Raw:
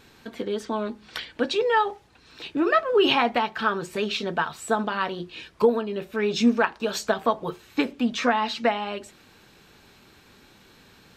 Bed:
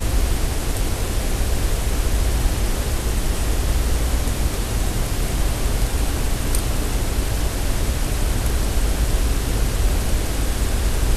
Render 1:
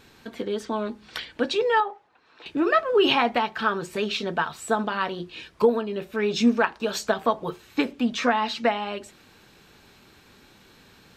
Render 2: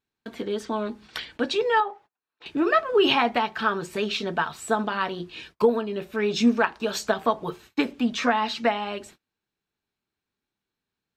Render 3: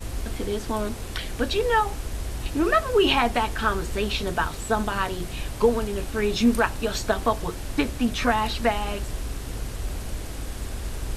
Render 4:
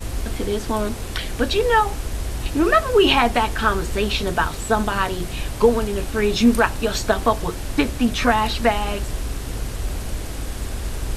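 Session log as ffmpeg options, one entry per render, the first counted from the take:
-filter_complex "[0:a]asettb=1/sr,asplit=3[s0][s1][s2];[s0]atrim=end=1.804[s3];[s1]atrim=start=1.8:end=2.46,asetpts=PTS-STARTPTS,afade=t=in:d=0.004:c=qsin,afade=t=out:st=0.656:d=0.004:c=qsin,bandpass=f=950:t=q:w=0.92[s4];[s2]atrim=start=2.456[s5];[s3][s4]acrossfade=d=0.004:c1=hsin:c2=qsin[s6];[s6][s5]acrossfade=d=0.004:c1=qsin:c2=hsin"
-af "bandreject=f=520:w=12,agate=range=0.0224:threshold=0.00447:ratio=16:detection=peak"
-filter_complex "[1:a]volume=0.266[s0];[0:a][s0]amix=inputs=2:normalize=0"
-af "volume=1.68"

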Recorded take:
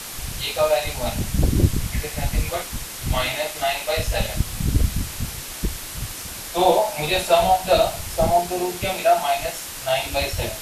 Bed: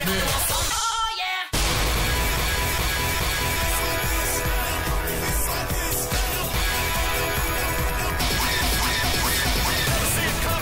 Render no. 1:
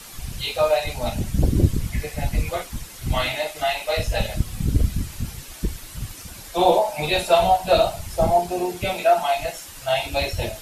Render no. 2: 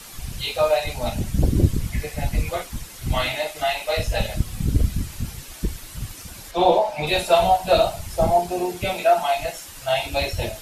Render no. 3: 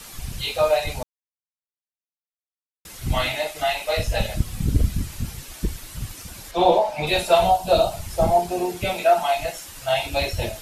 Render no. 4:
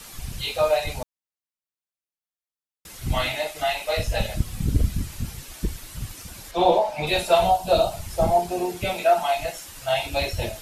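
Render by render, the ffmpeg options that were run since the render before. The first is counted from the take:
-af "afftdn=nr=9:nf=-34"
-filter_complex "[0:a]asettb=1/sr,asplit=3[s0][s1][s2];[s0]atrim=end=6.514[s3];[s1]atrim=start=6.51:end=7.07,asetpts=PTS-STARTPTS,afade=t=in:d=0.004:c=qsin,afade=t=out:st=0.556:d=0.004:c=qsin,acrossover=split=5500[s4][s5];[s5]acompressor=threshold=0.002:ratio=4:attack=1:release=60[s6];[s4][s6]amix=inputs=2:normalize=0[s7];[s2]atrim=start=7.066[s8];[s3][s7]acrossfade=d=0.004:c1=hsin:c2=qsin[s9];[s9][s8]acrossfade=d=0.004:c1=qsin:c2=hsin"
-filter_complex "[0:a]asettb=1/sr,asplit=3[s0][s1][s2];[s0]atrim=end=7.514[s3];[s1]atrim=start=7.51:end=7.92,asetpts=PTS-STARTPTS,afade=t=in:d=0.004:c=qsin,afade=t=out:st=0.406:d=0.004:c=qsin,equalizer=f=1900:t=o:w=0.87:g=-9.5[s4];[s2]atrim=start=7.916[s5];[s3][s4]acrossfade=d=0.004:c1=hsin:c2=qsin[s6];[s6][s5]acrossfade=d=0.004:c1=qsin:c2=hsin,asplit=3[s7][s8][s9];[s7]atrim=end=1.03,asetpts=PTS-STARTPTS,afade=t=out:st=1.026:d=0.004:c=hsin[s10];[s8]atrim=start=1.03:end=2.85,asetpts=PTS-STARTPTS,volume=0[s11];[s9]atrim=start=2.85,asetpts=PTS-STARTPTS,afade=t=in:d=0.004:c=hsin[s12];[s10][s11][s12]concat=n=3:v=0:a=1"
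-af "volume=0.841"

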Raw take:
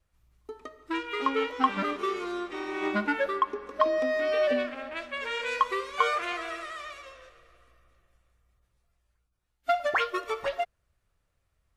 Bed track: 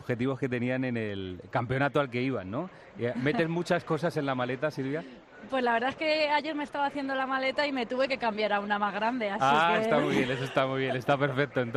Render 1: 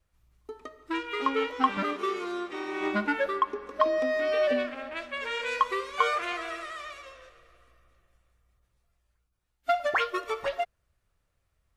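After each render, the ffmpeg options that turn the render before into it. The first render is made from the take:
-filter_complex "[0:a]asettb=1/sr,asplit=3[s0][s1][s2];[s0]atrim=end=1.774[s3];[s1]atrim=start=1.77:end=2.81,asetpts=PTS-STARTPTS,afade=t=in:d=0.004:c=qsin,afade=t=out:st=1.036:d=0.004:c=qsin,highpass=90[s4];[s2]atrim=start=2.806[s5];[s3][s4]acrossfade=d=0.004:c1=hsin:c2=qsin[s6];[s6][s5]acrossfade=d=0.004:c1=qsin:c2=hsin"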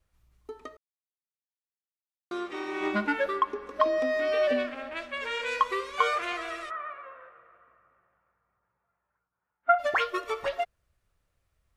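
-filter_complex "[0:a]asplit=3[s0][s1][s2];[s0]afade=t=out:st=6.69:d=0.02[s3];[s1]highpass=170,equalizer=f=310:t=q:w=4:g=-7,equalizer=f=920:t=q:w=4:g=9,equalizer=f=1400:t=q:w=4:g=8,lowpass=f=2000:w=0.5412,lowpass=f=2000:w=1.3066,afade=t=in:st=6.69:d=0.02,afade=t=out:st=9.78:d=0.02[s4];[s2]afade=t=in:st=9.78:d=0.02[s5];[s3][s4][s5]amix=inputs=3:normalize=0,asplit=3[s6][s7][s8];[s6]atrim=end=0.77,asetpts=PTS-STARTPTS,afade=t=out:st=0.766:d=0.004:c=hsin[s9];[s7]atrim=start=0.77:end=2.31,asetpts=PTS-STARTPTS,volume=0[s10];[s8]atrim=start=2.31,asetpts=PTS-STARTPTS,afade=t=in:d=0.004:c=hsin[s11];[s9][s10][s11]concat=n=3:v=0:a=1"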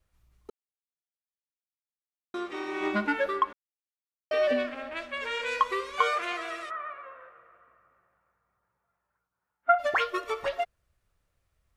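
-filter_complex "[0:a]asettb=1/sr,asplit=3[s0][s1][s2];[s0]atrim=end=6.024[s3];[s1]atrim=start=6.02:end=6.7,asetpts=PTS-STARTPTS,afade=t=in:d=0.004:c=qsin,afade=t=out:st=0.676:d=0.004:c=qsin,highpass=f=130:p=1[s4];[s2]atrim=start=6.696[s5];[s3][s4]acrossfade=d=0.004:c1=hsin:c2=qsin[s6];[s6][s5]acrossfade=d=0.004:c1=qsin:c2=hsin,asplit=5[s7][s8][s9][s10][s11];[s7]atrim=end=0.5,asetpts=PTS-STARTPTS,afade=t=out:st=0.496:d=0.004:c=hsin[s12];[s8]atrim=start=0.5:end=2.34,asetpts=PTS-STARTPTS,volume=0[s13];[s9]atrim=start=2.34:end=3.53,asetpts=PTS-STARTPTS,afade=t=in:d=0.004:c=hsin,afade=t=out:st=1.186:d=0.004:c=hsin[s14];[s10]atrim=start=3.53:end=4.31,asetpts=PTS-STARTPTS,volume=0[s15];[s11]atrim=start=4.31,asetpts=PTS-STARTPTS,afade=t=in:d=0.004:c=hsin[s16];[s12][s13][s14][s15][s16]concat=n=5:v=0:a=1"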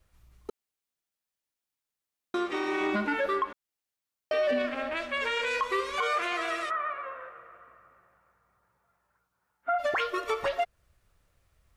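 -filter_complex "[0:a]asplit=2[s0][s1];[s1]acompressor=threshold=0.0178:ratio=6,volume=1.12[s2];[s0][s2]amix=inputs=2:normalize=0,alimiter=limit=0.1:level=0:latency=1:release=19"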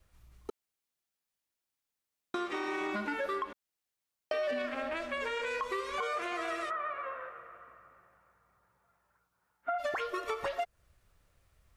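-filter_complex "[0:a]acrossover=split=730|2300|4600[s0][s1][s2][s3];[s0]acompressor=threshold=0.0141:ratio=4[s4];[s1]acompressor=threshold=0.0141:ratio=4[s5];[s2]acompressor=threshold=0.00282:ratio=4[s6];[s3]acompressor=threshold=0.00178:ratio=4[s7];[s4][s5][s6][s7]amix=inputs=4:normalize=0"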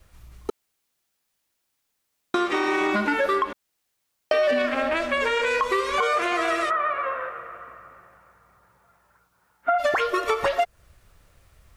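-af "volume=3.98"

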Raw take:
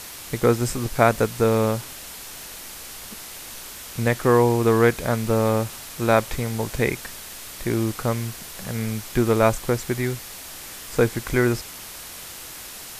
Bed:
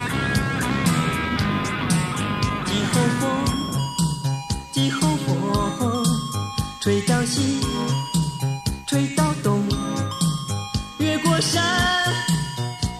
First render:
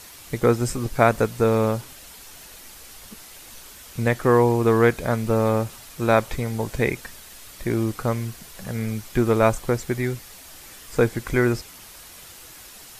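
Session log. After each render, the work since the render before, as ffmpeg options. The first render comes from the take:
-af "afftdn=nr=7:nf=-38"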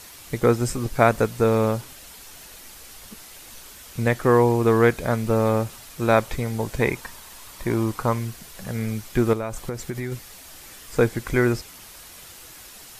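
-filter_complex "[0:a]asettb=1/sr,asplit=3[s0][s1][s2];[s0]atrim=end=6.804[s3];[s1]atrim=start=6.8:end=8.19,asetpts=PTS-STARTPTS,afade=t=in:d=0.004:c=qsin,afade=t=out:st=1.386:d=0.004:c=qsin,equalizer=f=980:w=3:g=9[s4];[s2]atrim=start=8.186[s5];[s3][s4]acrossfade=d=0.004:c1=hsin:c2=qsin[s6];[s6][s5]acrossfade=d=0.004:c1=qsin:c2=hsin,asettb=1/sr,asplit=3[s7][s8][s9];[s7]atrim=end=9.334[s10];[s8]atrim=start=9.33:end=10.12,asetpts=PTS-STARTPTS,afade=t=in:d=0.004:c=qsin,afade=t=out:st=0.786:d=0.004:c=qsin,acompressor=threshold=0.0631:ratio=8:attack=3.2:release=140:knee=1:detection=peak[s11];[s9]atrim=start=10.116[s12];[s10][s11]acrossfade=d=0.004:c1=hsin:c2=qsin[s13];[s13][s12]acrossfade=d=0.004:c1=qsin:c2=hsin"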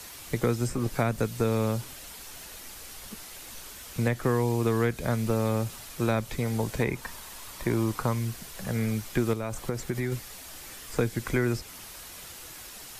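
-filter_complex "[0:a]acrossover=split=92|270|2300[s0][s1][s2][s3];[s0]acompressor=threshold=0.0126:ratio=4[s4];[s1]acompressor=threshold=0.0447:ratio=4[s5];[s2]acompressor=threshold=0.0355:ratio=4[s6];[s3]acompressor=threshold=0.0112:ratio=4[s7];[s4][s5][s6][s7]amix=inputs=4:normalize=0"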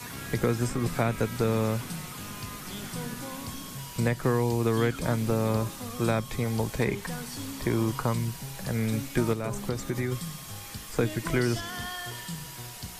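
-filter_complex "[1:a]volume=0.141[s0];[0:a][s0]amix=inputs=2:normalize=0"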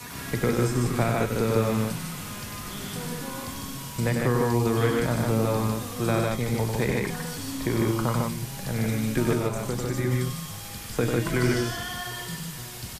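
-filter_complex "[0:a]asplit=2[s0][s1];[s1]adelay=41,volume=0.224[s2];[s0][s2]amix=inputs=2:normalize=0,aecho=1:1:96.21|151.6:0.562|0.794"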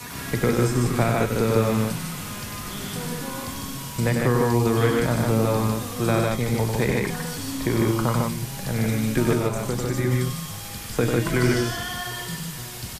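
-af "volume=1.41"

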